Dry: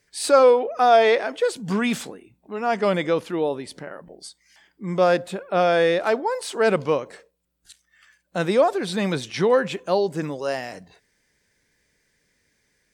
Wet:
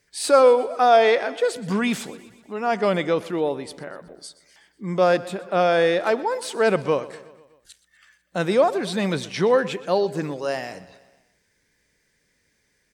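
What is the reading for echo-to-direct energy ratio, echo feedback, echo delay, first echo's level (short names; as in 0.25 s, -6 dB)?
-16.5 dB, 59%, 0.123 s, -18.5 dB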